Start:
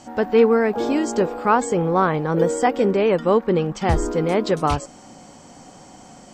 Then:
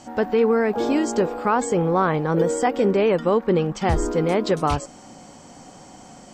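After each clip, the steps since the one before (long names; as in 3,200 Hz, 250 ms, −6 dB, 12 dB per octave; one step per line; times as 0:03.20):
boost into a limiter +9 dB
level −9 dB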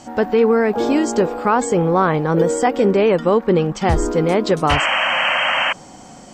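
sound drawn into the spectrogram noise, 0:04.69–0:05.73, 510–3,200 Hz −22 dBFS
level +4 dB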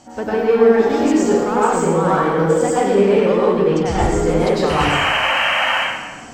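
in parallel at −7 dB: hard clipping −22 dBFS, distortion −5 dB
on the sum: dense smooth reverb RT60 1.2 s, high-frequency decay 0.85×, pre-delay 85 ms, DRR −8 dB
level −9.5 dB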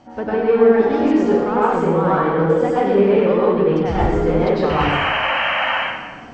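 high-frequency loss of the air 230 metres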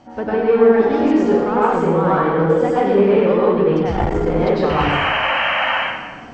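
saturating transformer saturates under 260 Hz
level +1 dB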